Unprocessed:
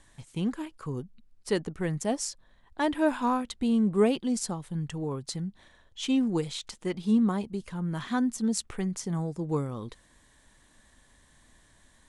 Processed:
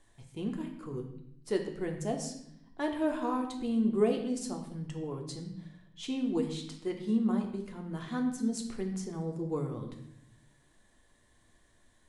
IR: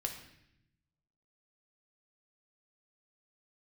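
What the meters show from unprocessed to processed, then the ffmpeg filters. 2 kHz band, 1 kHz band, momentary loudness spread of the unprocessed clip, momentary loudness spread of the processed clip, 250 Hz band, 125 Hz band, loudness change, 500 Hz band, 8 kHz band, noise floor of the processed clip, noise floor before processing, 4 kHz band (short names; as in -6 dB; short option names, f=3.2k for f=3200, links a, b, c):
-7.0 dB, -6.0 dB, 13 LU, 15 LU, -4.0 dB, -5.5 dB, -4.5 dB, -2.5 dB, -8.0 dB, -66 dBFS, -62 dBFS, -7.0 dB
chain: -filter_complex "[0:a]equalizer=f=430:w=0.86:g=5[a];[1:a]atrim=start_sample=2205[b];[a][b]afir=irnorm=-1:irlink=0,volume=-8dB"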